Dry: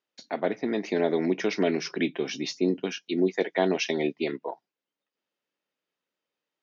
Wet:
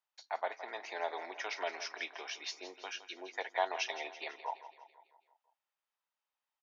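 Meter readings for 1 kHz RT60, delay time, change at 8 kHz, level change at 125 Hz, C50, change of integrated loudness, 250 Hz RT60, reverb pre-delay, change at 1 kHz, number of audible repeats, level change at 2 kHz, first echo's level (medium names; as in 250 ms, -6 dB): no reverb, 166 ms, no reading, under -40 dB, no reverb, -12.0 dB, no reverb, no reverb, -2.5 dB, 5, -6.0 dB, -13.5 dB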